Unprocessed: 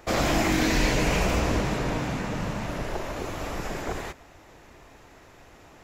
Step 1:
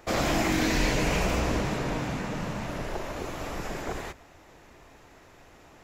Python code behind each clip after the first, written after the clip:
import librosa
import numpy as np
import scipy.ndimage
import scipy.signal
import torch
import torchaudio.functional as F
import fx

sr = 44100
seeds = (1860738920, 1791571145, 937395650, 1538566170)

y = fx.hum_notches(x, sr, base_hz=50, count=2)
y = y * librosa.db_to_amplitude(-2.0)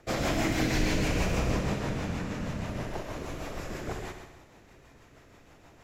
y = fx.octave_divider(x, sr, octaves=1, level_db=-3.0)
y = fx.rotary(y, sr, hz=6.3)
y = fx.echo_heads(y, sr, ms=65, heads='first and second', feedback_pct=50, wet_db=-10.0)
y = y * librosa.db_to_amplitude(-2.0)